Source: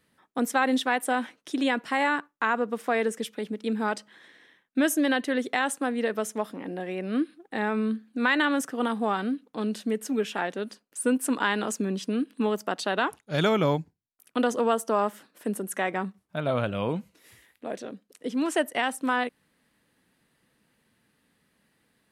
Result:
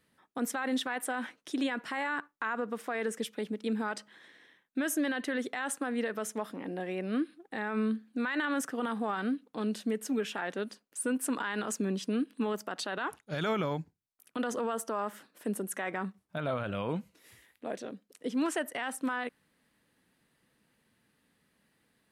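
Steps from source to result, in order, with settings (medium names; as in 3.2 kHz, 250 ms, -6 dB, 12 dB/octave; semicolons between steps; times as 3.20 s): dynamic bell 1.5 kHz, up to +5 dB, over -39 dBFS, Q 1.3; peak limiter -20 dBFS, peak gain reduction 12.5 dB; trim -3 dB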